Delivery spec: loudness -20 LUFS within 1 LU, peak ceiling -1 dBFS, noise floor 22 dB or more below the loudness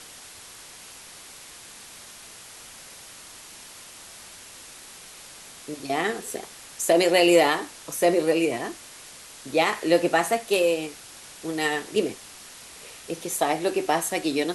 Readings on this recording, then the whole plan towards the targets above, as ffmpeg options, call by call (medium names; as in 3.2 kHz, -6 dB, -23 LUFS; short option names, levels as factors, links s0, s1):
noise floor -45 dBFS; noise floor target -46 dBFS; loudness -24.0 LUFS; peak level -6.5 dBFS; loudness target -20.0 LUFS
-> -af "afftdn=nr=6:nf=-45"
-af "volume=1.58"